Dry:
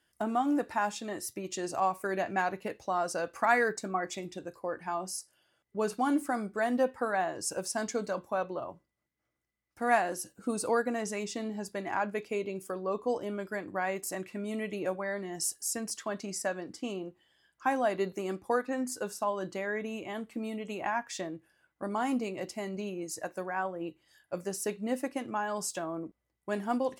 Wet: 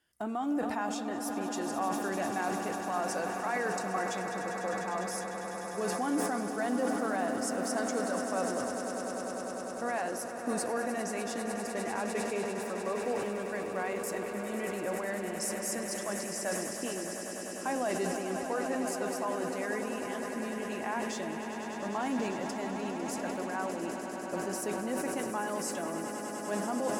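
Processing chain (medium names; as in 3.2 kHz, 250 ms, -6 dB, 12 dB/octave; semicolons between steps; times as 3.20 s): peak limiter -21.5 dBFS, peak gain reduction 9.5 dB; on a send: echo with a slow build-up 100 ms, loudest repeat 8, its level -12 dB; on the sum: decay stretcher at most 29 dB/s; trim -3 dB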